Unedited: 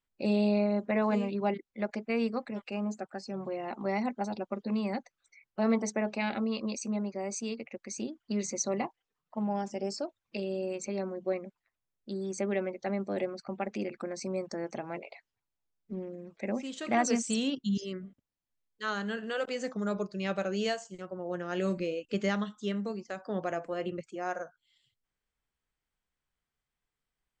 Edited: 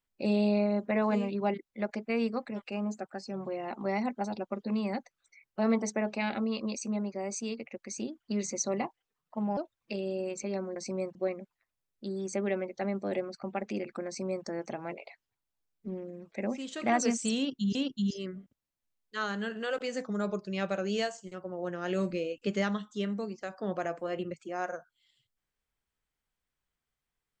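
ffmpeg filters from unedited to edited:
-filter_complex "[0:a]asplit=5[a][b][c][d][e];[a]atrim=end=9.572[f];[b]atrim=start=10.008:end=11.202[g];[c]atrim=start=14.118:end=14.512[h];[d]atrim=start=11.198:end=17.802[i];[e]atrim=start=17.418[j];[f][g]acrossfade=d=0.004:c1=hsin:c2=hsin[k];[k][h]acrossfade=d=0.004:c1=hsin:c2=hsin[l];[l][i]acrossfade=d=0.004:c1=hsin:c2=hsin[m];[m][j]acrossfade=d=0.004:c1=hsin:c2=hsin"

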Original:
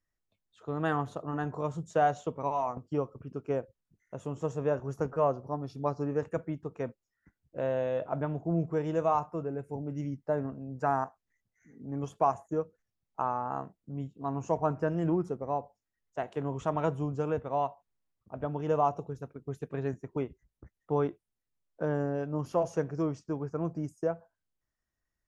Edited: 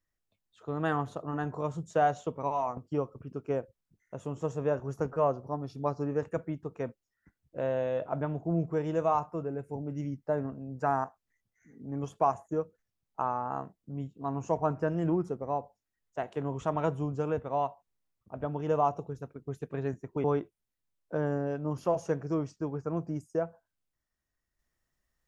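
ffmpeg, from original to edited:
-filter_complex "[0:a]asplit=2[a][b];[a]atrim=end=20.242[c];[b]atrim=start=20.918[d];[c][d]acrossfade=d=0.004:c1=hsin:c2=hsin"

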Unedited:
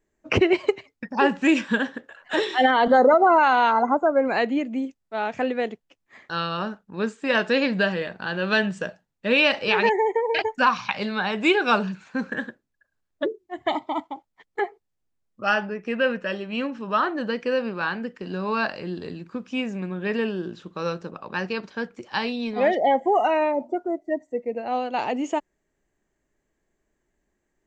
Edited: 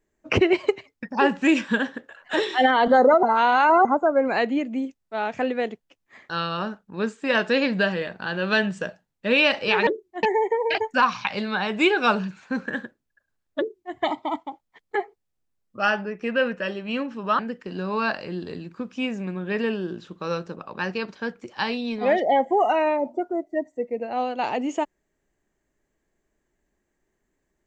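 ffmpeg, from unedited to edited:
-filter_complex "[0:a]asplit=6[a][b][c][d][e][f];[a]atrim=end=3.232[g];[b]atrim=start=3.228:end=3.852,asetpts=PTS-STARTPTS,areverse[h];[c]atrim=start=3.848:end=9.872[i];[d]atrim=start=13.228:end=13.592[j];[e]atrim=start=9.868:end=17.032[k];[f]atrim=start=17.938[l];[g][h]acrossfade=d=0.004:c1=hsin:c2=hsin[m];[m][i]acrossfade=d=0.004:c1=hsin:c2=hsin[n];[n][j]acrossfade=d=0.004:c1=hsin:c2=hsin[o];[o][k]acrossfade=d=0.004:c1=hsin:c2=hsin[p];[p][l]acrossfade=d=0.004:c1=hsin:c2=hsin"

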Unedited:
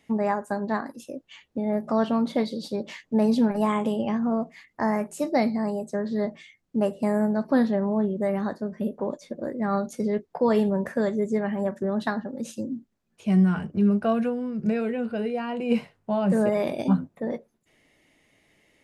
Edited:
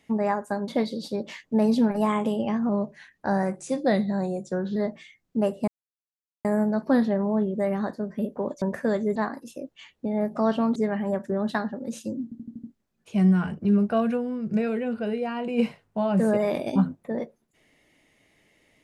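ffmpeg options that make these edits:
-filter_complex "[0:a]asplit=13[a][b][c][d][e][f][g][h][i][j][k][l][m];[a]atrim=end=0.682[n];[b]atrim=start=2.278:end=4.294[o];[c]atrim=start=4.29:end=6.15,asetpts=PTS-STARTPTS,asetrate=39690,aresample=44100[p];[d]atrim=start=6.146:end=7.07,asetpts=PTS-STARTPTS,afade=t=out:st=0.92:d=0.004:c=hsin,apad=pad_dur=0.77[q];[e]atrim=start=7.07:end=9.242,asetpts=PTS-STARTPTS,afade=t=in:d=0.004:c=hsin[r];[f]atrim=start=10.738:end=11.282[s];[g]atrim=start=0.678:end=2.282[t];[h]atrim=start=11.278:end=12.842[u];[i]atrim=start=12.758:end=12.842[v];[j]atrim=start=12.758:end=12.842[w];[k]atrim=start=12.758:end=12.842[x];[l]atrim=start=12.758:end=12.842[y];[m]atrim=start=12.758[z];[n][o]acrossfade=d=0.004:c1=hsin:c2=hsin[aa];[aa][p]acrossfade=d=0.004:c1=hsin:c2=hsin[ab];[q][r]concat=n=2:v=0:a=1[ac];[ab][ac]acrossfade=d=0.004:c1=hsin:c2=hsin[ad];[ad][s]acrossfade=d=0.004:c1=hsin:c2=hsin[ae];[ae][t]acrossfade=d=0.004:c1=hsin:c2=hsin[af];[af][u]acrossfade=d=0.004:c1=hsin:c2=hsin[ag];[ag][v]acrossfade=d=0.004:c1=hsin:c2=hsin[ah];[ah][w]acrossfade=d=0.004:c1=hsin:c2=hsin[ai];[ai][x]acrossfade=d=0.004:c1=hsin:c2=hsin[aj];[aj][y]acrossfade=d=0.004:c1=hsin:c2=hsin[ak];[ak][z]acrossfade=d=0.004:c1=hsin:c2=hsin"

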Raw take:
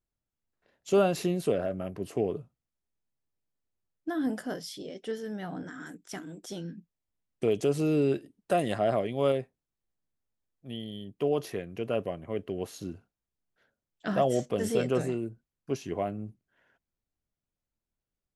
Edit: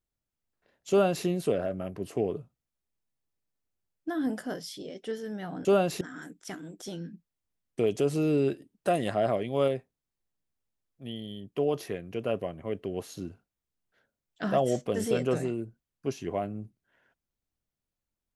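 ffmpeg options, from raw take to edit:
-filter_complex "[0:a]asplit=3[a][b][c];[a]atrim=end=5.652[d];[b]atrim=start=0.898:end=1.262[e];[c]atrim=start=5.648[f];[d][e]acrossfade=d=0.004:c1=hsin:c2=hsin[g];[g][f]acrossfade=d=0.004:c1=hsin:c2=hsin"

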